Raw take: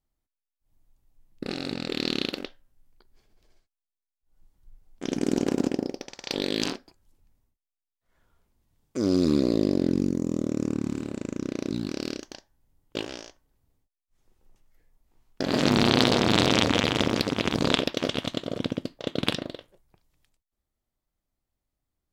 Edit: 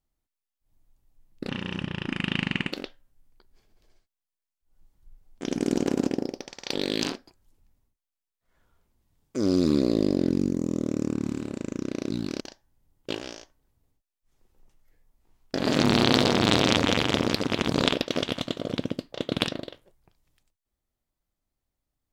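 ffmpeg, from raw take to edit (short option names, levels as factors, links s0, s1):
-filter_complex "[0:a]asplit=4[s0][s1][s2][s3];[s0]atrim=end=1.494[s4];[s1]atrim=start=1.49:end=2.33,asetpts=PTS-STARTPTS,asetrate=29988,aresample=44100,atrim=end_sample=54476,asetpts=PTS-STARTPTS[s5];[s2]atrim=start=2.326:end=12.012[s6];[s3]atrim=start=12.268[s7];[s4][s5]acrossfade=d=0.004:c1=hsin:c2=hsin[s8];[s8][s6]acrossfade=d=0.004:c1=hsin:c2=hsin[s9];[s9][s7]acrossfade=d=0.004:c1=hsin:c2=hsin"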